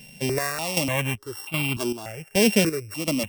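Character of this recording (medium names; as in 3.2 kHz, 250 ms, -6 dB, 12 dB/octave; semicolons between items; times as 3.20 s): a buzz of ramps at a fixed pitch in blocks of 16 samples; chopped level 1.3 Hz, depth 65%, duty 50%; notches that jump at a steady rate 3.4 Hz 330–1700 Hz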